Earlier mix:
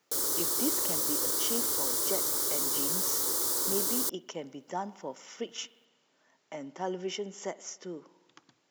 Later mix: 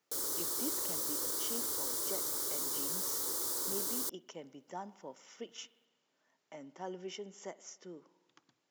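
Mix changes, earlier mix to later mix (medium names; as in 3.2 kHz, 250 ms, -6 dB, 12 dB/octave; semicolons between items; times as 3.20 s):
speech -8.5 dB; background -6.5 dB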